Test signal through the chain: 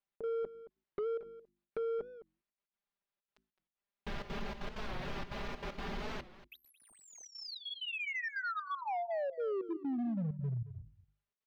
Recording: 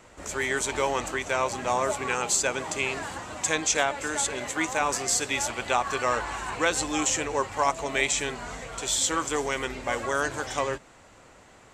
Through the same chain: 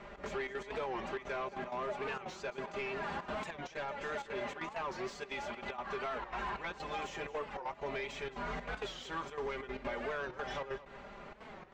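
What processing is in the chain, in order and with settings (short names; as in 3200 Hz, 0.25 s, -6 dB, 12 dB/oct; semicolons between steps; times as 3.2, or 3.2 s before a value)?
notches 50/100/150/200/250/300/350 Hz; comb 5 ms, depth 87%; compressor 8:1, threshold -34 dBFS; step gate "xx.xxx.x.xxxx" 192 bpm -12 dB; overloaded stage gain 35 dB; air absorption 260 m; echo 0.222 s -16 dB; record warp 45 rpm, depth 160 cents; gain +2.5 dB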